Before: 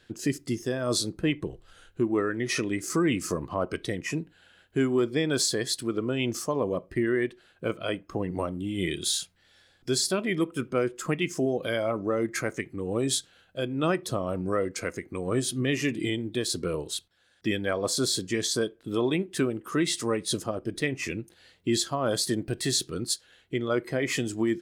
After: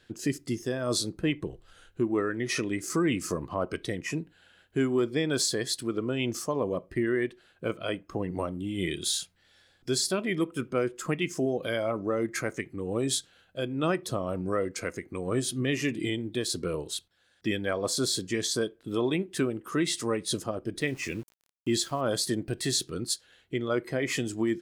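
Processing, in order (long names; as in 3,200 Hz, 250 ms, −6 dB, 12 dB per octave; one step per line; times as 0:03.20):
0:20.81–0:22.01: centre clipping without the shift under −45.5 dBFS
level −1.5 dB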